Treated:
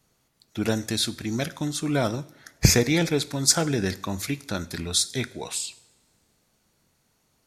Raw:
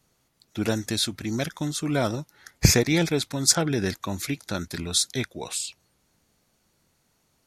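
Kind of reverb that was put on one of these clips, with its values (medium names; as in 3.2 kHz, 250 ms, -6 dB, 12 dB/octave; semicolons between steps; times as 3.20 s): two-slope reverb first 0.61 s, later 2.1 s, from -18 dB, DRR 14.5 dB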